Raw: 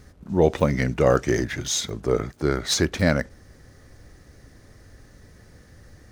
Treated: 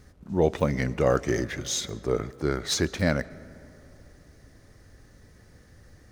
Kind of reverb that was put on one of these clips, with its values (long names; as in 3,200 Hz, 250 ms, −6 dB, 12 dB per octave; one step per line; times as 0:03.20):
comb and all-pass reverb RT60 3 s, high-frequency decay 0.4×, pre-delay 85 ms, DRR 19.5 dB
level −4 dB